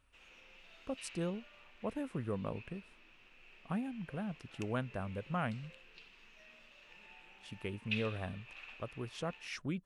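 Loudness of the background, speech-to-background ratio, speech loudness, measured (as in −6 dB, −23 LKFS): −51.5 LKFS, 10.0 dB, −41.5 LKFS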